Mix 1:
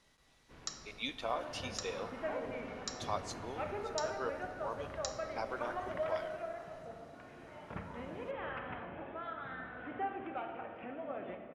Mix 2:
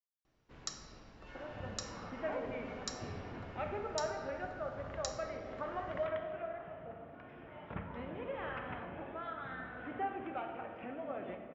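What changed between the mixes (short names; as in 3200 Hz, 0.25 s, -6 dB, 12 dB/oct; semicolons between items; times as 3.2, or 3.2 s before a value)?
speech: muted; master: add low shelf 190 Hz +3 dB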